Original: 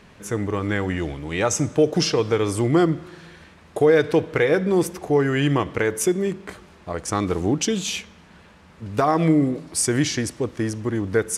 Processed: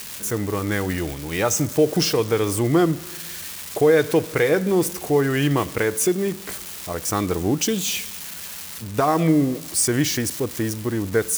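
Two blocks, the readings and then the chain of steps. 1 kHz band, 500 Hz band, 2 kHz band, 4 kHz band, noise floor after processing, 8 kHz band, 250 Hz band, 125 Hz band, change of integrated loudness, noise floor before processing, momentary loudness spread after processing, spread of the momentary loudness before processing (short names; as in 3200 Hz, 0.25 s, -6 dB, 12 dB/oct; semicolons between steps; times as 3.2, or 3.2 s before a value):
0.0 dB, 0.0 dB, +0.5 dB, +1.5 dB, -36 dBFS, +3.5 dB, 0.0 dB, 0.0 dB, 0.0 dB, -50 dBFS, 12 LU, 11 LU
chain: switching spikes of -22.5 dBFS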